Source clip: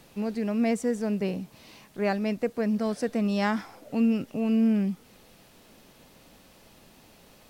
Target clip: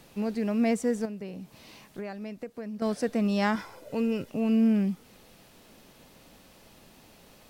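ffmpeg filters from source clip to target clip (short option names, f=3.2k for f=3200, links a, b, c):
-filter_complex "[0:a]asettb=1/sr,asplit=3[a][b][c];[a]atrim=end=1.054[d];[b]atrim=start=1.05:end=2.82,asetpts=PTS-STARTPTS,afade=t=in:d=0.004:c=qsin,afade=t=out:st=1.766:d=0.004:c=qsin,acompressor=threshold=-35dB:ratio=8[e];[c]atrim=start=2.816[f];[d][e]acrossfade=d=0.004:c1=hsin:c2=qsin[g];[g][f]acrossfade=d=0.004:c1=qsin:c2=hsin,asettb=1/sr,asplit=3[h][i][j];[h]atrim=end=3.554[k];[i]atrim=start=3.55:end=4.29,asetpts=PTS-STARTPTS,afade=t=in:d=0.004:c=qsin,afade=t=out:st=0.736:d=0.004:c=qsin,aecho=1:1:2:0.52,atrim=end_sample=32634[l];[j]atrim=start=4.286[m];[k][l]acrossfade=d=0.004:c1=hsin:c2=qsin[n];[n][m]acrossfade=d=0.004:c1=qsin:c2=hsin"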